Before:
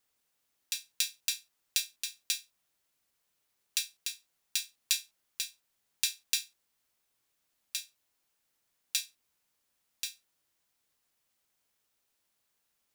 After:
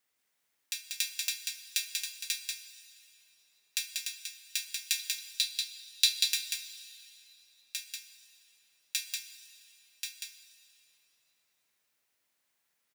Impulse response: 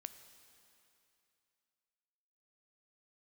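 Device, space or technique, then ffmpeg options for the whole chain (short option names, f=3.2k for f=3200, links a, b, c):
PA in a hall: -filter_complex "[0:a]asettb=1/sr,asplit=3[a][b][c];[a]atrim=end=4.994[d];[b]atrim=start=4.99:end=6.22,asetpts=PTS-STARTPTS,afade=t=in:d=0.004:c=qsin,afade=t=out:st=1.226:d=0.004:c=qsin,equalizer=f=160:t=o:w=0.67:g=9,equalizer=f=4k:t=o:w=0.67:g=12,equalizer=f=10k:t=o:w=0.67:g=3[e];[c]atrim=start=6.216[f];[d][e]acrossfade=d=0.004:c1=hsin:c2=qsin[g];[g][f]acrossfade=d=0.004:c1=qsin:c2=hsin,highpass=f=110:p=1,equalizer=f=2k:t=o:w=0.63:g=5.5,aecho=1:1:189:0.631[h];[1:a]atrim=start_sample=2205[i];[h][i]afir=irnorm=-1:irlink=0,volume=3dB"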